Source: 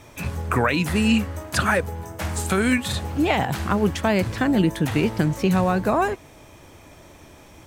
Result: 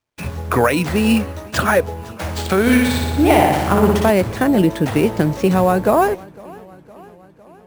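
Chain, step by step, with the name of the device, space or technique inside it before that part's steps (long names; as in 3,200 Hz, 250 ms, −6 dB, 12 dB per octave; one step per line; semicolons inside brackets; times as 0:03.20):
noise gate −36 dBFS, range −37 dB
early companding sampler (sample-rate reduction 12,000 Hz, jitter 0%; log-companded quantiser 8 bits)
dynamic equaliser 530 Hz, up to +7 dB, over −35 dBFS, Q 0.75
0:02.61–0:04.10: flutter between parallel walls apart 10.3 metres, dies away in 1.1 s
feedback echo with a swinging delay time 508 ms, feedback 62%, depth 103 cents, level −23.5 dB
level +1.5 dB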